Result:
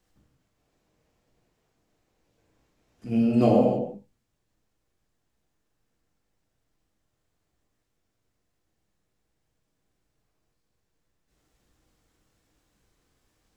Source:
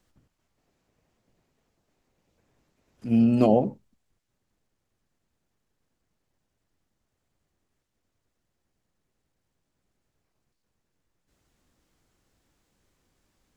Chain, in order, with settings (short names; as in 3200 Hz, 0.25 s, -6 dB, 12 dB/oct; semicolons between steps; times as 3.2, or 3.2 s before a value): non-linear reverb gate 0.35 s falling, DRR -2.5 dB; gain -3.5 dB